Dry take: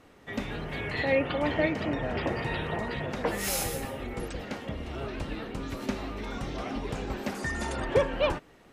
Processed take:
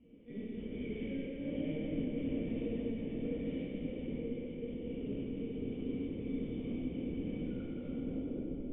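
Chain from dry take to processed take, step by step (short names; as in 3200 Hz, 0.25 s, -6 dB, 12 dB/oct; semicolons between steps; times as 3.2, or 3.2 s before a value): tape stop at the end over 1.52 s; bell 470 Hz +15 dB 0.72 oct; flutter echo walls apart 10.3 m, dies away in 0.34 s; hard clip -19 dBFS, distortion -9 dB; limiter -24.5 dBFS, peak gain reduction 6 dB; step gate "xxxx.xxxxxxx.xx" 141 bpm -60 dB; flange 0.25 Hz, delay 2.6 ms, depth 9.4 ms, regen -63%; LPC vocoder at 8 kHz pitch kept; vocal tract filter i; plate-style reverb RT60 4 s, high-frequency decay 0.95×, DRR -9 dB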